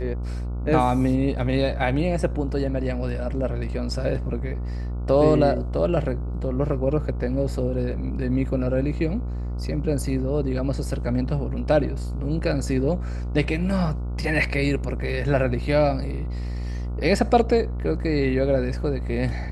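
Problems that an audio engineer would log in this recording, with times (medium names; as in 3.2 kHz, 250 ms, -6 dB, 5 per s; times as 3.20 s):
buzz 60 Hz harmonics 24 -28 dBFS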